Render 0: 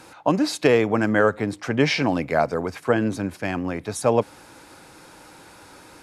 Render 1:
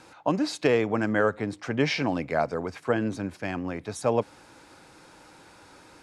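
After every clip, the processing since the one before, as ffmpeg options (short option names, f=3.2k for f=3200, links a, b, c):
-af "lowpass=8.8k,volume=-5dB"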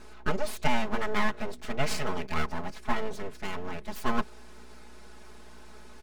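-af "aeval=exprs='val(0)+0.00562*(sin(2*PI*60*n/s)+sin(2*PI*2*60*n/s)/2+sin(2*PI*3*60*n/s)/3+sin(2*PI*4*60*n/s)/4+sin(2*PI*5*60*n/s)/5)':c=same,aeval=exprs='abs(val(0))':c=same,aecho=1:1:4.7:0.96,volume=-4dB"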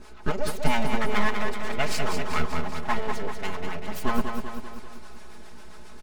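-filter_complex "[0:a]acrossover=split=620[a][b];[a]aeval=exprs='val(0)*(1-0.7/2+0.7/2*cos(2*PI*7.4*n/s))':c=same[c];[b]aeval=exprs='val(0)*(1-0.7/2-0.7/2*cos(2*PI*7.4*n/s))':c=same[d];[c][d]amix=inputs=2:normalize=0,asplit=2[e][f];[f]aecho=0:1:194|388|582|776|970|1164|1358:0.501|0.286|0.163|0.0928|0.0529|0.0302|0.0172[g];[e][g]amix=inputs=2:normalize=0,volume=5.5dB"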